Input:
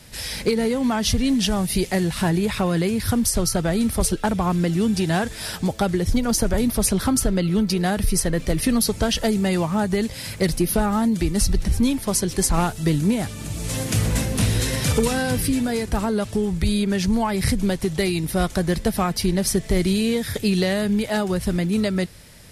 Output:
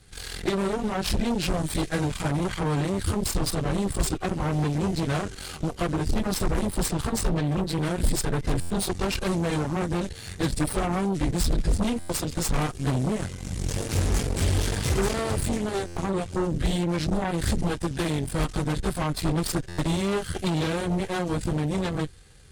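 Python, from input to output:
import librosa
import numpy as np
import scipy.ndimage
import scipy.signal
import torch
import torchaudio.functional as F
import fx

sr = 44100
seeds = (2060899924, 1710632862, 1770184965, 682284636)

y = fx.pitch_bins(x, sr, semitones=-2.5)
y = fx.low_shelf(y, sr, hz=220.0, db=6.0)
y = y + 0.3 * np.pad(y, (int(2.5 * sr / 1000.0), 0))[:len(y)]
y = fx.cheby_harmonics(y, sr, harmonics=(8,), levels_db=(-13,), full_scale_db=-8.0)
y = fx.buffer_glitch(y, sr, at_s=(8.6, 11.99, 15.86, 19.68), block=512, repeats=8)
y = y * 10.0 ** (-7.0 / 20.0)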